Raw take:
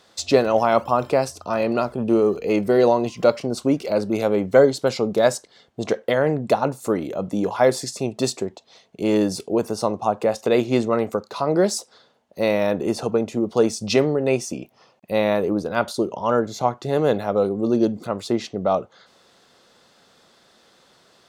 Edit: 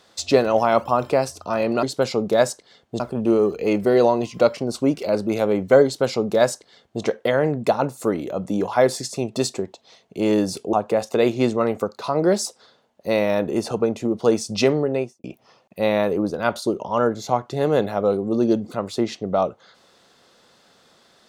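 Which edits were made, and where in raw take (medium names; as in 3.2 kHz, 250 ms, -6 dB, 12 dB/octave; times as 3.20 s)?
4.68–5.85 s: copy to 1.83 s
9.56–10.05 s: delete
14.15–14.56 s: studio fade out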